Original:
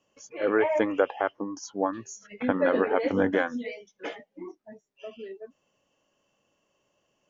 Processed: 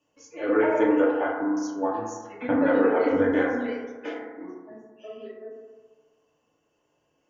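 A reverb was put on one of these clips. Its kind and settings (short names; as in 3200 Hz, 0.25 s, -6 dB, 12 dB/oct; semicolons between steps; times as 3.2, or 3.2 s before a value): FDN reverb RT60 1.4 s, low-frequency decay 0.9×, high-frequency decay 0.25×, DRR -5.5 dB; gain -5.5 dB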